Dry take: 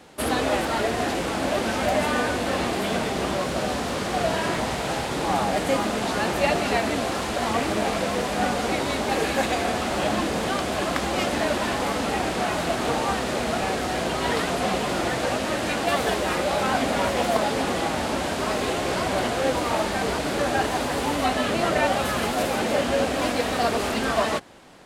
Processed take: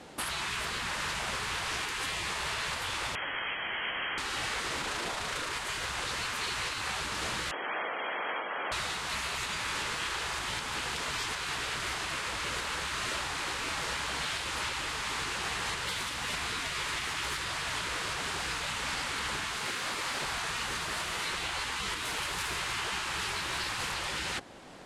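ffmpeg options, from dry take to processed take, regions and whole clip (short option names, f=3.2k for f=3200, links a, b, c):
-filter_complex "[0:a]asettb=1/sr,asplit=3[a][b][c];[a]atrim=end=3.154[d];[b]atrim=start=3.15:end=4.18,asetpts=PTS-STARTPTS,afade=t=in:d=0.004:c=qsin,afade=t=out:st=1.026:d=0.004:c=qsin,highpass=f=410:p=1,equalizer=f=950:t=o:w=1.3:g=6.5,lowpass=f=2.9k:t=q:w=0.5098,lowpass=f=2.9k:t=q:w=0.6013,lowpass=f=2.9k:t=q:w=0.9,lowpass=f=2.9k:t=q:w=2.563,afreqshift=-3400[e];[c]atrim=start=4.176[f];[d][e]acrossfade=d=0.004:c1=hsin:c2=qsin[g];[g][f]acrossfade=d=0.004:c1=qsin:c2=hsin,asettb=1/sr,asplit=3[h][i][j];[h]atrim=end=4.814[k];[i]atrim=start=4.81:end=5.53,asetpts=PTS-STARTPTS,afade=t=in:d=0.004:c=qsin,afade=t=out:st=0.716:d=0.004:c=qsin,lowshelf=f=180:g=8,tremolo=f=27:d=0.333[l];[j]atrim=start=5.526[m];[k][l]acrossfade=d=0.004:c1=hsin:c2=qsin[n];[n][m]acrossfade=d=0.004:c1=qsin:c2=hsin,asettb=1/sr,asplit=3[o][p][q];[o]atrim=end=7.514[r];[p]atrim=start=7.51:end=8.72,asetpts=PTS-STARTPTS,afade=t=in:d=0.004:c=qsin,afade=t=out:st=1.206:d=0.004:c=qsin,acontrast=66,lowpass=f=2.8k:t=q:w=0.5098,lowpass=f=2.8k:t=q:w=0.6013,lowpass=f=2.8k:t=q:w=0.9,lowpass=f=2.8k:t=q:w=2.563,afreqshift=-3300,highpass=330[s];[q]atrim=start=8.716[t];[r][s]acrossfade=d=0.004:c1=hsin:c2=qsin[u];[u][t]acrossfade=d=0.004:c1=qsin:c2=hsin,asettb=1/sr,asplit=3[v][w][x];[v]atrim=end=19.584[y];[w]atrim=start=19.58:end=20.22,asetpts=PTS-STARTPTS,afade=t=in:d=0.004:c=qsin,afade=t=out:st=0.636:d=0.004:c=qsin,acrusher=bits=6:mix=0:aa=0.5,aeval=exprs='val(0)+0.02*(sin(2*PI*50*n/s)+sin(2*PI*2*50*n/s)/2+sin(2*PI*3*50*n/s)/3+sin(2*PI*4*50*n/s)/4+sin(2*PI*5*50*n/s)/5)':c=same[z];[x]atrim=start=20.216[aa];[y][z]acrossfade=d=0.004:c1=hsin:c2=qsin[ab];[ab][aa]acrossfade=d=0.004:c1=qsin:c2=hsin,lowpass=11k,afftfilt=real='re*lt(hypot(re,im),0.112)':imag='im*lt(hypot(re,im),0.112)':win_size=1024:overlap=0.75,alimiter=limit=-23.5dB:level=0:latency=1:release=345"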